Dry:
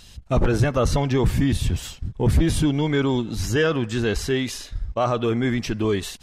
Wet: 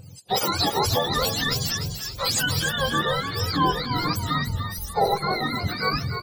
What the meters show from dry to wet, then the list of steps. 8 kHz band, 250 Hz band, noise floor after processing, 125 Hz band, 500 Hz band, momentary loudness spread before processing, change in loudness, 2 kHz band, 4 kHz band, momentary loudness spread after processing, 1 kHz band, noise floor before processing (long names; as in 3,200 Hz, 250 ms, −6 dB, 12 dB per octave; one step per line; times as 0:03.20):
+4.0 dB, −8.0 dB, −41 dBFS, −6.0 dB, −5.0 dB, 6 LU, −1.5 dB, +2.5 dB, +7.5 dB, 5 LU, +6.5 dB, −46 dBFS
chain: frequency axis turned over on the octave scale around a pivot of 700 Hz
thirty-one-band graphic EQ 500 Hz +11 dB, 800 Hz +5 dB, 2,000 Hz −5 dB, 5,000 Hz +8 dB
echo with shifted repeats 295 ms, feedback 38%, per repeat −43 Hz, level −8 dB
level −1.5 dB